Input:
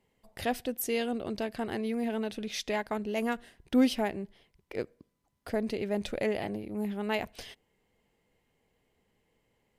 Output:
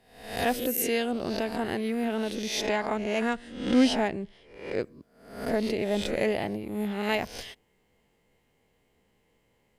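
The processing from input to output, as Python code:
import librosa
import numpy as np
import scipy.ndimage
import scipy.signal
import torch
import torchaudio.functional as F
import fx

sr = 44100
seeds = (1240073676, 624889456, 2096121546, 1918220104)

y = fx.spec_swells(x, sr, rise_s=0.63)
y = fx.lowpass(y, sr, hz=9100.0, slope=24, at=(2.66, 4.83))
y = F.gain(torch.from_numpy(y), 2.5).numpy()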